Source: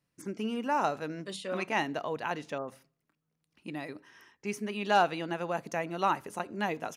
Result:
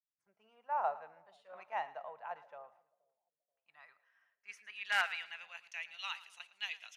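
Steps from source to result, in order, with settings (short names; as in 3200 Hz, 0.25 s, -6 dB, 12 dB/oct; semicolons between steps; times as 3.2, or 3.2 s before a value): passive tone stack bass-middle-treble 10-0-10; wrapped overs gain 22.5 dB; band-pass sweep 700 Hz -> 3000 Hz, 2.49–5.98; split-band echo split 650 Hz, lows 0.479 s, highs 0.112 s, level -15.5 dB; three-band expander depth 70%; gain +5 dB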